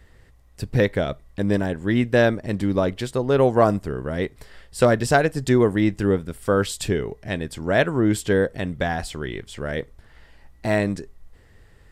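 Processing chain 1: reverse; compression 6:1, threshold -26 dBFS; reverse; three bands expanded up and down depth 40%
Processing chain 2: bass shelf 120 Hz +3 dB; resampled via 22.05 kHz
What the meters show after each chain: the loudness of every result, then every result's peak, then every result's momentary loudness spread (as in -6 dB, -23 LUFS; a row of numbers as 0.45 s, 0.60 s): -31.5 LUFS, -22.0 LUFS; -12.0 dBFS, -2.5 dBFS; 6 LU, 12 LU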